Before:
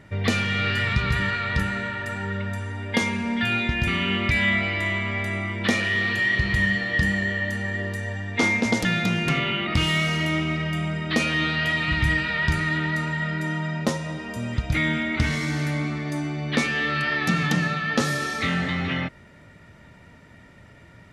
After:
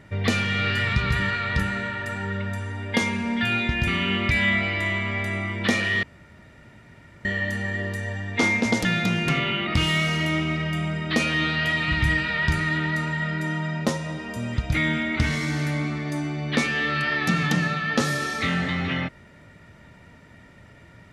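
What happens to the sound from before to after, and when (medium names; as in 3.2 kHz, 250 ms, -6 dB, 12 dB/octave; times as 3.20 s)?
6.03–7.25 s: room tone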